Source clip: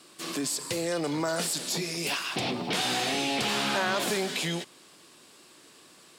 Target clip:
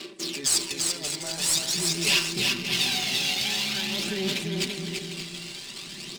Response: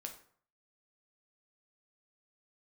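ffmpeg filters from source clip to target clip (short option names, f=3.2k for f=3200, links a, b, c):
-filter_complex "[0:a]equalizer=f=340:t=o:w=1:g=12,aecho=1:1:5.1:0.7,asubboost=boost=7.5:cutoff=150,areverse,acompressor=threshold=-37dB:ratio=12,areverse,aphaser=in_gain=1:out_gain=1:delay=1.5:decay=0.61:speed=0.47:type=sinusoidal,asplit=2[a][b];[b]aecho=0:1:340|578|744.6|861.2|942.9:0.631|0.398|0.251|0.158|0.1[c];[a][c]amix=inputs=2:normalize=0,aexciter=amount=4:drive=8.3:freq=2k,adynamicsmooth=sensitivity=4.5:basefreq=2.1k"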